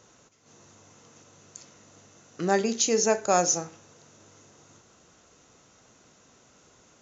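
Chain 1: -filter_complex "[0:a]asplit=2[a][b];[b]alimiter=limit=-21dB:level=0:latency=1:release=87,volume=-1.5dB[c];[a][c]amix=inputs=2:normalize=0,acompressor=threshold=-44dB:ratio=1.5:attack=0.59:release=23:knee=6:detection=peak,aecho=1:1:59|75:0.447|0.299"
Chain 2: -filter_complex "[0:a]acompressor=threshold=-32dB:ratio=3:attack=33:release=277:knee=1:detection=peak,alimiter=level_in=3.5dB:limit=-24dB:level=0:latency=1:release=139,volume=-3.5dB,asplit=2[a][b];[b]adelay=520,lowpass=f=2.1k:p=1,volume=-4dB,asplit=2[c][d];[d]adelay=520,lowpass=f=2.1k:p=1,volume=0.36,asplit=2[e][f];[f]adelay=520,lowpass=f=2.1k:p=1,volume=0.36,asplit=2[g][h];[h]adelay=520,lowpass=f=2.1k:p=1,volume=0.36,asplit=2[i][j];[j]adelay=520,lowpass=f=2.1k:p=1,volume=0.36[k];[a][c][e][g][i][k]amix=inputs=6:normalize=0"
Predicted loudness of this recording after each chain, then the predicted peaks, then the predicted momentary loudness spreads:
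-31.5, -40.5 LUFS; -17.0, -24.0 dBFS; 22, 20 LU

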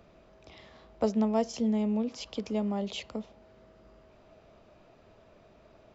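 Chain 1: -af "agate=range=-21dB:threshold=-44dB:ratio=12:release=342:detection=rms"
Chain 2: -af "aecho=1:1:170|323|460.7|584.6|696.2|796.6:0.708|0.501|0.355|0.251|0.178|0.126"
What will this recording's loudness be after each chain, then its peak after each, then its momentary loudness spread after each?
-31.0, -28.5 LUFS; -14.5, -13.5 dBFS; 12, 14 LU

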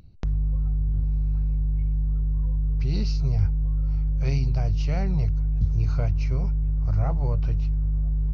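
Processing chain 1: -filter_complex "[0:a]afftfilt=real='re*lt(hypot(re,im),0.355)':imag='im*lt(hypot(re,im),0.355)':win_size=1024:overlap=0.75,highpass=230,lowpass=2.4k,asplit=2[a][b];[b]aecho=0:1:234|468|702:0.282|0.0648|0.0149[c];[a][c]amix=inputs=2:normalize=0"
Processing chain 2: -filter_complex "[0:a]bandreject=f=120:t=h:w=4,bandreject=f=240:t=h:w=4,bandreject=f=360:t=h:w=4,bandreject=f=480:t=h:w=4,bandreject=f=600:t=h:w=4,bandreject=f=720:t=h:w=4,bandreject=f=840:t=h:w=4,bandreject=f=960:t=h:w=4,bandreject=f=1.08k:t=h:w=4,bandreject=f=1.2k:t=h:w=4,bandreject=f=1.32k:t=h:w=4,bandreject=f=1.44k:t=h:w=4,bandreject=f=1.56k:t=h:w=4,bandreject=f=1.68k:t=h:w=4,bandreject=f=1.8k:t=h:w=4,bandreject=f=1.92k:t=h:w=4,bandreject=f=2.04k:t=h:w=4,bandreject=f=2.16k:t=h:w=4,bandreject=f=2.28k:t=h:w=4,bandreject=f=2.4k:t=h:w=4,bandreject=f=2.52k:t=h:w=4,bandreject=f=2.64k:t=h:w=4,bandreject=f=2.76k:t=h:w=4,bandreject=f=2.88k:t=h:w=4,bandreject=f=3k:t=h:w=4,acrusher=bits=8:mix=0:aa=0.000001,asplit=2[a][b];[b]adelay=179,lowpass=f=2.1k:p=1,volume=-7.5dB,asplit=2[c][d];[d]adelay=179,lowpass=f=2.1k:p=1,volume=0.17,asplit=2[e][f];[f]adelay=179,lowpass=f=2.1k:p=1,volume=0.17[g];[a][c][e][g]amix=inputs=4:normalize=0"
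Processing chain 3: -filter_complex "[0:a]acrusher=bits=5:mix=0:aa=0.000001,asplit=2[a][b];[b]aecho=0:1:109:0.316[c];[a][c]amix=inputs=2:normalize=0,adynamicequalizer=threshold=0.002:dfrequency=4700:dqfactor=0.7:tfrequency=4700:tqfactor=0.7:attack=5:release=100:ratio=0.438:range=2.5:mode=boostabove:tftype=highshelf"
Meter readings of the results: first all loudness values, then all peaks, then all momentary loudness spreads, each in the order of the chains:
-41.0, -23.0, -27.0 LUFS; -20.0, -10.0, -11.5 dBFS; 6, 1, 4 LU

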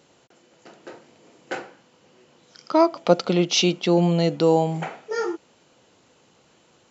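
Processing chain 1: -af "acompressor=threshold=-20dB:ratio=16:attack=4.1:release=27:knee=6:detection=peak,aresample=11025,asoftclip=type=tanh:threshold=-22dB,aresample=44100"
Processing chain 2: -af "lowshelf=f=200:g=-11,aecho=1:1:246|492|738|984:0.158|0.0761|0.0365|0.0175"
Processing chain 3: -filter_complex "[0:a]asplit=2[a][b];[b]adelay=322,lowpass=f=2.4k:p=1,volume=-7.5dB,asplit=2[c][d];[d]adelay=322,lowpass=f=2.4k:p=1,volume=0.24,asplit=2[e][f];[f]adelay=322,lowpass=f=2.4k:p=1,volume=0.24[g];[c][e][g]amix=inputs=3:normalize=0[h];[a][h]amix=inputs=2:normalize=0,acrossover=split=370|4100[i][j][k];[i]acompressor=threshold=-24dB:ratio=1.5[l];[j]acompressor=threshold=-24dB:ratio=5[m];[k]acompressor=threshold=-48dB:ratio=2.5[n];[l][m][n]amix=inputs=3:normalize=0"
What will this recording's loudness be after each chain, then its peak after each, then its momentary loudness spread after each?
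-30.0, -23.5, -25.0 LUFS; -17.5, -5.5, -8.5 dBFS; 18, 14, 20 LU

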